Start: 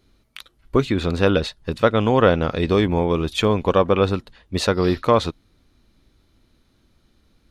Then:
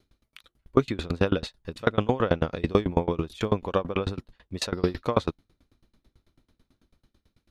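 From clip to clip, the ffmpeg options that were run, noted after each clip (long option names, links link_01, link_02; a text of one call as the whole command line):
ffmpeg -i in.wav -filter_complex "[0:a]acrossover=split=1400[link_01][link_02];[link_01]dynaudnorm=framelen=110:gausssize=11:maxgain=3dB[link_03];[link_03][link_02]amix=inputs=2:normalize=0,aeval=exprs='val(0)*pow(10,-28*if(lt(mod(9.1*n/s,1),2*abs(9.1)/1000),1-mod(9.1*n/s,1)/(2*abs(9.1)/1000),(mod(9.1*n/s,1)-2*abs(9.1)/1000)/(1-2*abs(9.1)/1000))/20)':channel_layout=same" out.wav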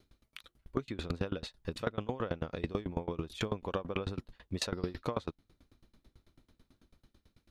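ffmpeg -i in.wav -af "acompressor=threshold=-31dB:ratio=8" out.wav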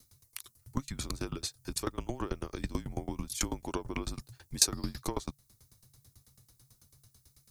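ffmpeg -i in.wav -af "aexciter=amount=7.7:drive=6.3:freq=5000,afreqshift=-140" out.wav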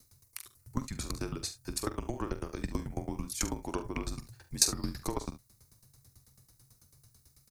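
ffmpeg -i in.wav -filter_complex "[0:a]equalizer=frequency=3300:width=3.5:gain=-6.5,asplit=2[link_01][link_02];[link_02]aecho=0:1:45|71:0.266|0.168[link_03];[link_01][link_03]amix=inputs=2:normalize=0" out.wav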